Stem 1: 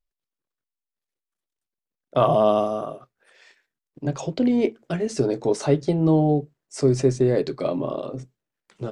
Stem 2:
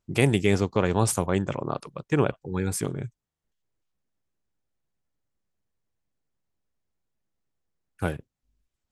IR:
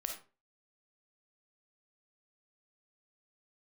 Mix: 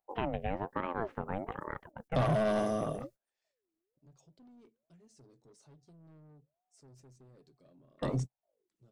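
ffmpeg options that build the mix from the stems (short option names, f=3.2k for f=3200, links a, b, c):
-filter_complex "[0:a]bass=f=250:g=11,treble=f=4k:g=13,asoftclip=type=tanh:threshold=-16dB,volume=-2dB[a];[1:a]lowpass=f=2.2k:w=0.5412,lowpass=f=2.2k:w=1.3066,aeval=exprs='val(0)*sin(2*PI*530*n/s+530*0.4/1.2*sin(2*PI*1.2*n/s))':c=same,volume=-7.5dB,asplit=2[b][c];[c]apad=whole_len=393032[d];[a][d]sidechaingate=range=-37dB:threshold=-52dB:ratio=16:detection=peak[e];[e][b]amix=inputs=2:normalize=0,acompressor=threshold=-31dB:ratio=2"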